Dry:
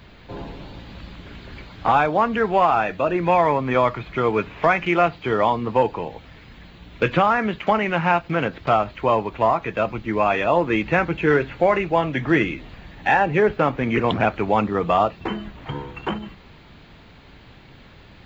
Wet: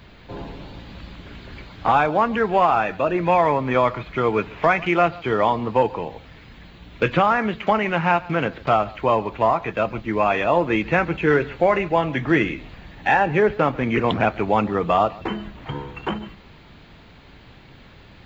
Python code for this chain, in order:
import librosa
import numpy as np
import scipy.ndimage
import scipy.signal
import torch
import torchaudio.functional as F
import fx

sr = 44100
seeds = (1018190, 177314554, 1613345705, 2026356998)

y = x + 10.0 ** (-21.5 / 20.0) * np.pad(x, (int(140 * sr / 1000.0), 0))[:len(x)]